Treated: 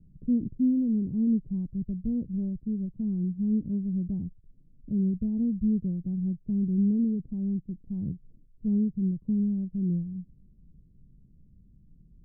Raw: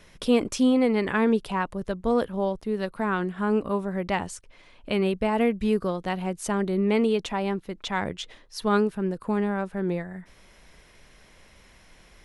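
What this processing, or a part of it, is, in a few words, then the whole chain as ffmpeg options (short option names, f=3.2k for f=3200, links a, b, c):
the neighbour's flat through the wall: -af "lowpass=f=240:w=0.5412,lowpass=f=240:w=1.3066,equalizer=f=140:t=o:w=0.86:g=6.5"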